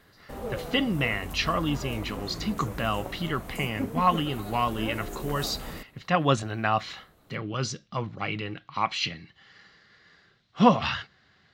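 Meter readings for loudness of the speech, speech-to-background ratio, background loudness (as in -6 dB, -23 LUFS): -28.0 LUFS, 10.0 dB, -38.0 LUFS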